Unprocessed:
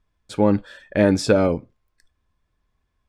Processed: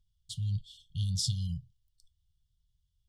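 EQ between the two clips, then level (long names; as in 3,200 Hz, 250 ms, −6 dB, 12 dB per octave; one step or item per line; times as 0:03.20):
linear-phase brick-wall band-stop 170–2,800 Hz
−3.0 dB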